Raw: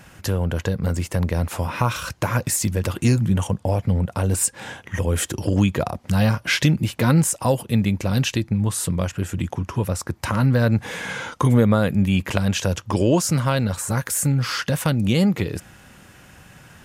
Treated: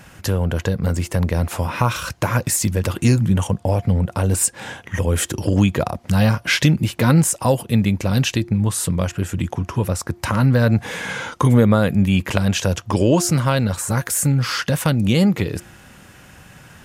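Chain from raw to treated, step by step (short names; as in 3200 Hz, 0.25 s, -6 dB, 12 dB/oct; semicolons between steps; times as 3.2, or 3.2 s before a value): de-hum 350.2 Hz, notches 2; gain +2.5 dB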